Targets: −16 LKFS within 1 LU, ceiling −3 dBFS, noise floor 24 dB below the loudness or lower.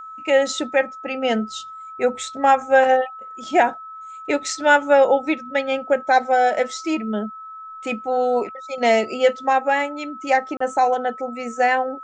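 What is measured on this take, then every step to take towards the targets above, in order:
number of dropouts 1; longest dropout 34 ms; interfering tone 1,300 Hz; level of the tone −34 dBFS; integrated loudness −20.0 LKFS; sample peak −3.5 dBFS; target loudness −16.0 LKFS
→ repair the gap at 0:10.57, 34 ms
notch filter 1,300 Hz, Q 30
level +4 dB
brickwall limiter −3 dBFS

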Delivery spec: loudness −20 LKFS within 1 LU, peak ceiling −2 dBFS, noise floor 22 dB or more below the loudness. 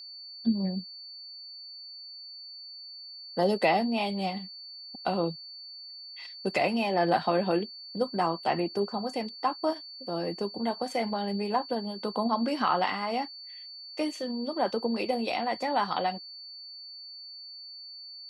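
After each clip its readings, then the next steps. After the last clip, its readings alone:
interfering tone 4,500 Hz; level of the tone −42 dBFS; integrated loudness −30.0 LKFS; sample peak −12.5 dBFS; target loudness −20.0 LKFS
→ notch filter 4,500 Hz, Q 30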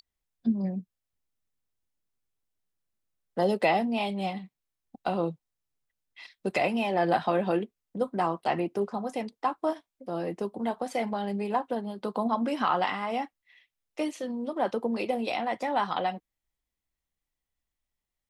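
interfering tone none found; integrated loudness −30.0 LKFS; sample peak −12.5 dBFS; target loudness −20.0 LKFS
→ level +10 dB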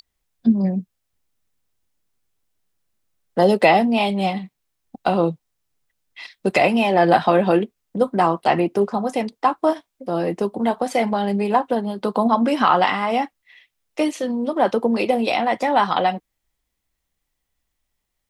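integrated loudness −20.0 LKFS; sample peak −2.5 dBFS; background noise floor −77 dBFS

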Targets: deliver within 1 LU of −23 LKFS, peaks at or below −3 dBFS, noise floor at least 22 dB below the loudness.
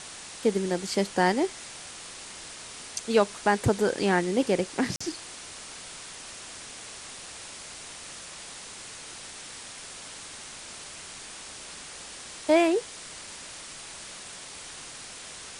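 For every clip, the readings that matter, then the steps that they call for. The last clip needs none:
number of dropouts 1; longest dropout 45 ms; background noise floor −43 dBFS; target noise floor −53 dBFS; integrated loudness −31.0 LKFS; sample peak −8.5 dBFS; target loudness −23.0 LKFS
→ repair the gap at 0:04.96, 45 ms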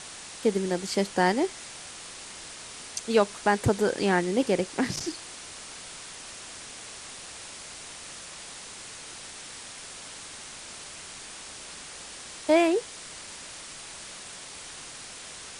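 number of dropouts 0; background noise floor −43 dBFS; target noise floor −53 dBFS
→ broadband denoise 10 dB, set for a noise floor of −43 dBFS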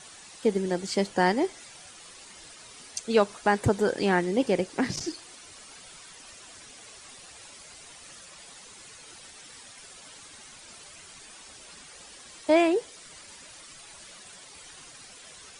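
background noise floor −49 dBFS; integrated loudness −26.5 LKFS; sample peak −9.0 dBFS; target loudness −23.0 LKFS
→ level +3.5 dB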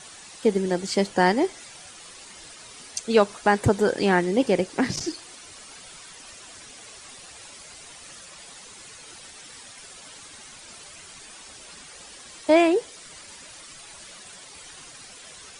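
integrated loudness −23.0 LKFS; sample peak −5.5 dBFS; background noise floor −45 dBFS

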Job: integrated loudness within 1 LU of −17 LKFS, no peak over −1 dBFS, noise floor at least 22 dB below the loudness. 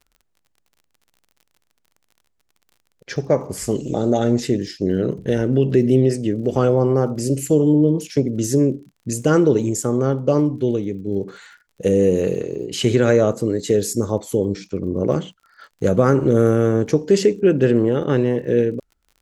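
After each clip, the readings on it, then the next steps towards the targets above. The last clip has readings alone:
crackle rate 44 per second; integrated loudness −19.0 LKFS; sample peak −1.5 dBFS; target loudness −17.0 LKFS
→ click removal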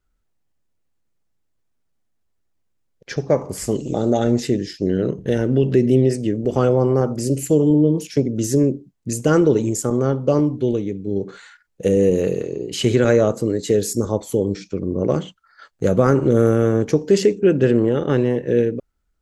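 crackle rate 0 per second; integrated loudness −19.0 LKFS; sample peak −1.5 dBFS; target loudness −17.0 LKFS
→ level +2 dB
brickwall limiter −1 dBFS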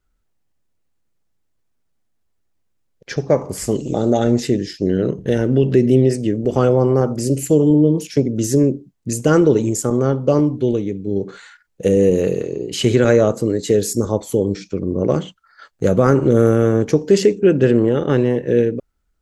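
integrated loudness −17.0 LKFS; sample peak −1.0 dBFS; background noise floor −67 dBFS

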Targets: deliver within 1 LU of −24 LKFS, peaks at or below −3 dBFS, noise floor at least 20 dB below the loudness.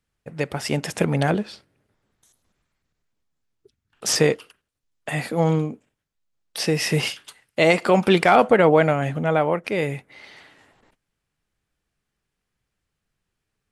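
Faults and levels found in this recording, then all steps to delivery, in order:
integrated loudness −21.0 LKFS; sample peak −3.0 dBFS; target loudness −24.0 LKFS
→ level −3 dB

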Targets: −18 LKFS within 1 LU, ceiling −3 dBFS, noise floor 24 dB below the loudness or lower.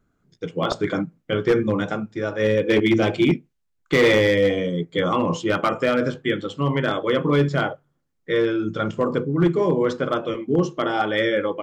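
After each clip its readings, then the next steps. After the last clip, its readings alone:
share of clipped samples 0.6%; peaks flattened at −11.0 dBFS; integrated loudness −21.5 LKFS; sample peak −11.0 dBFS; target loudness −18.0 LKFS
→ clipped peaks rebuilt −11 dBFS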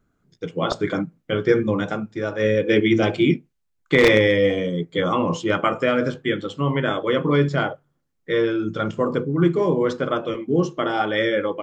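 share of clipped samples 0.0%; integrated loudness −21.0 LKFS; sample peak −2.0 dBFS; target loudness −18.0 LKFS
→ level +3 dB
brickwall limiter −3 dBFS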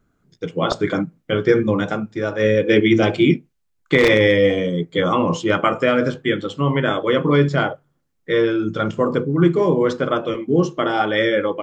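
integrated loudness −18.5 LKFS; sample peak −3.0 dBFS; background noise floor −68 dBFS

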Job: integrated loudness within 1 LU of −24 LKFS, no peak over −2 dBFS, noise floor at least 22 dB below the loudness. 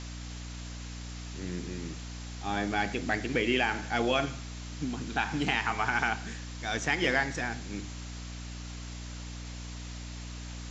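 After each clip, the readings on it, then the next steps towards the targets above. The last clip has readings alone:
mains hum 60 Hz; hum harmonics up to 300 Hz; level of the hum −39 dBFS; background noise floor −41 dBFS; target noise floor −55 dBFS; integrated loudness −32.5 LKFS; sample peak −13.0 dBFS; target loudness −24.0 LKFS
→ hum removal 60 Hz, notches 5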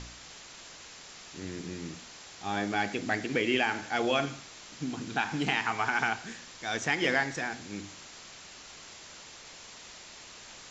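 mains hum none found; background noise floor −49 dBFS; target noise floor −53 dBFS
→ noise reduction from a noise print 6 dB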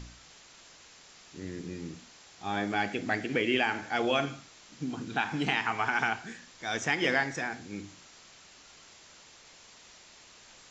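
background noise floor −55 dBFS; integrated loudness −31.0 LKFS; sample peak −12.5 dBFS; target loudness −24.0 LKFS
→ level +7 dB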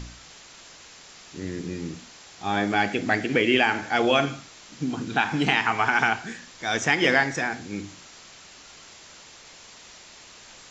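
integrated loudness −24.0 LKFS; sample peak −5.5 dBFS; background noise floor −48 dBFS

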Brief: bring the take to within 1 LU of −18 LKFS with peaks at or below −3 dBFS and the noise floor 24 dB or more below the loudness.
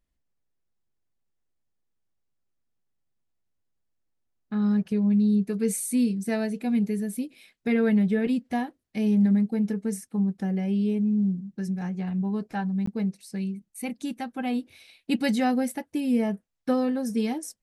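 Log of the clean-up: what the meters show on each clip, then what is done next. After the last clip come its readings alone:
number of dropouts 1; longest dropout 14 ms; integrated loudness −26.5 LKFS; sample peak −13.0 dBFS; target loudness −18.0 LKFS
→ repair the gap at 0:12.86, 14 ms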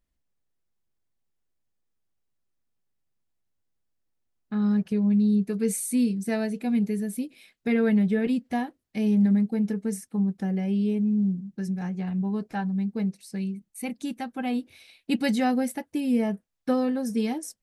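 number of dropouts 0; integrated loudness −26.5 LKFS; sample peak −13.0 dBFS; target loudness −18.0 LKFS
→ level +8.5 dB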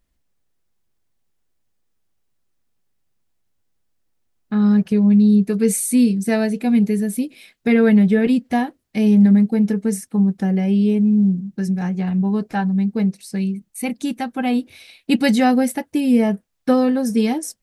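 integrated loudness −18.0 LKFS; sample peak −4.5 dBFS; background noise floor −69 dBFS

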